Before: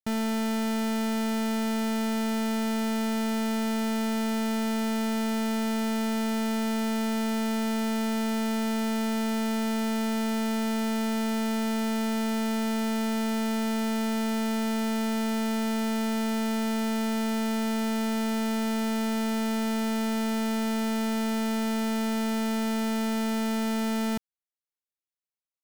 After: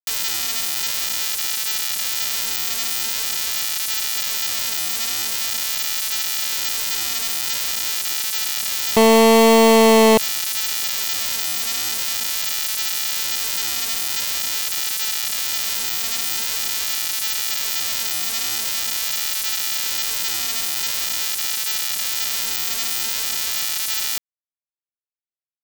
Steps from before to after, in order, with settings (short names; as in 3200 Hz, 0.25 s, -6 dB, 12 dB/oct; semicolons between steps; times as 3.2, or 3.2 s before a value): 8.96–10.18 EQ curve 310 Hz 0 dB, 440 Hz +11 dB, 2300 Hz -9 dB; in parallel at -0.5 dB: limiter -31 dBFS, peak gain reduction 11 dB; on the sum: vibrato 0.45 Hz 26 cents; bit-crush 4-bit; gain +9 dB